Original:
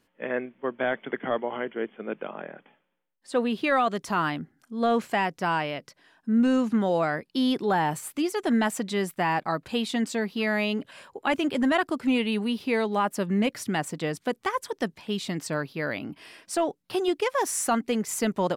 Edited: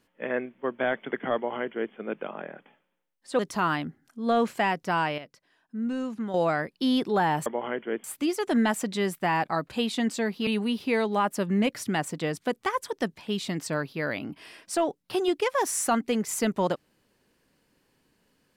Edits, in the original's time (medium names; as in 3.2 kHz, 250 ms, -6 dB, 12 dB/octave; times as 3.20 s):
1.35–1.93 s: copy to 8.00 s
3.39–3.93 s: delete
5.72–6.88 s: gain -8.5 dB
10.43–12.27 s: delete